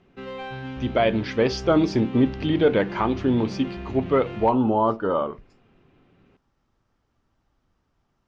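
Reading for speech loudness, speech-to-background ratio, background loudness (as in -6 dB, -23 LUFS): -22.5 LUFS, 13.0 dB, -35.5 LUFS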